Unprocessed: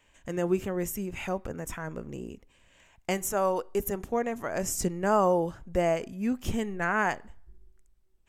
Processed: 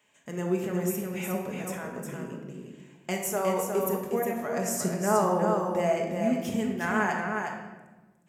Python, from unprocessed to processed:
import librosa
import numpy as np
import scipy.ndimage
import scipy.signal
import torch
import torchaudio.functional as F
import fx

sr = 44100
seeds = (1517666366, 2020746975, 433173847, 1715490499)

p1 = scipy.signal.sosfilt(scipy.signal.butter(4, 120.0, 'highpass', fs=sr, output='sos'), x)
p2 = fx.high_shelf(p1, sr, hz=8000.0, db=4.0)
p3 = p2 + fx.echo_single(p2, sr, ms=360, db=-5.0, dry=0)
p4 = fx.room_shoebox(p3, sr, seeds[0], volume_m3=850.0, walls='mixed', distance_m=1.4)
y = p4 * 10.0 ** (-3.5 / 20.0)